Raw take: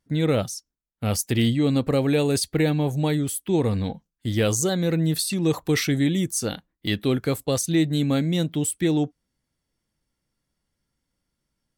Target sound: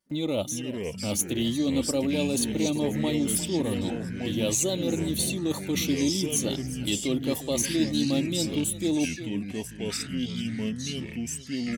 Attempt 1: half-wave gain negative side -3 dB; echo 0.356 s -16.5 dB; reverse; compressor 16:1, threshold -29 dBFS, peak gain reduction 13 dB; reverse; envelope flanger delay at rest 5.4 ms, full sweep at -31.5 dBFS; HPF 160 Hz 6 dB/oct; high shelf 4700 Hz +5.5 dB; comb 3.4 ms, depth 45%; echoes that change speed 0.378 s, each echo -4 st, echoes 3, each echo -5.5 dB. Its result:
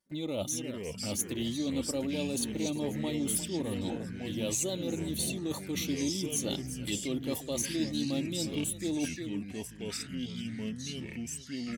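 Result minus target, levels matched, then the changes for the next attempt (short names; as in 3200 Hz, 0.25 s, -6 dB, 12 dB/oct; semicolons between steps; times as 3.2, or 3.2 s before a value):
compressor: peak gain reduction +7 dB
change: compressor 16:1, threshold -21.5 dBFS, peak gain reduction 6 dB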